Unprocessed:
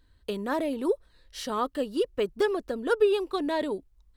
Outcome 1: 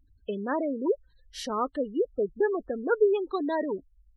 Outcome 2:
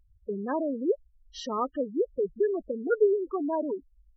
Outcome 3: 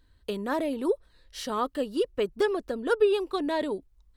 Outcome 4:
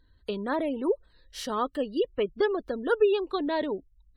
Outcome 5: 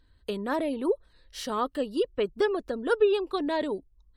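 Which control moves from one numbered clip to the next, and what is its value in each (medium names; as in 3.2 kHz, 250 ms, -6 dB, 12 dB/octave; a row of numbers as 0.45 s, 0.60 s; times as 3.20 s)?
spectral gate, under each frame's peak: -20 dB, -10 dB, -60 dB, -35 dB, -45 dB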